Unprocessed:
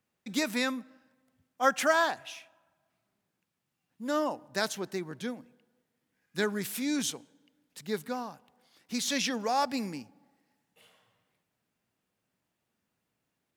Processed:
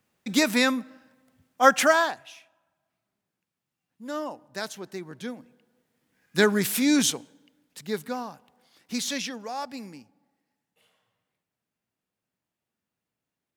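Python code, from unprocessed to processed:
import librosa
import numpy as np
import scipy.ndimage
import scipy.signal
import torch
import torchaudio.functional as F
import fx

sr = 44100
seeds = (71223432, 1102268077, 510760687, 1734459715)

y = fx.gain(x, sr, db=fx.line((1.8, 8.0), (2.26, -3.0), (4.8, -3.0), (6.39, 9.5), (6.97, 9.5), (7.84, 3.0), (8.99, 3.0), (9.4, -5.5)))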